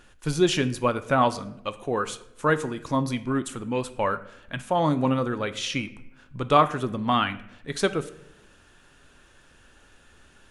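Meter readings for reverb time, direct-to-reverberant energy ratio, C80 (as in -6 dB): 0.85 s, 11.5 dB, 18.0 dB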